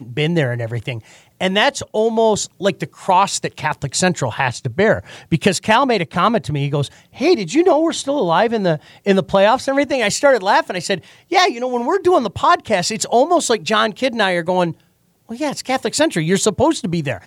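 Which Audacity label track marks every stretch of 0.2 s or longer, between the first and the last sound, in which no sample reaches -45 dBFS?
14.810000	15.290000	silence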